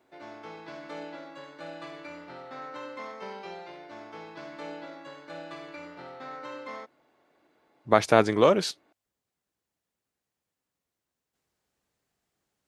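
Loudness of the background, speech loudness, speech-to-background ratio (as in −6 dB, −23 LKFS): −42.0 LKFS, −23.0 LKFS, 19.0 dB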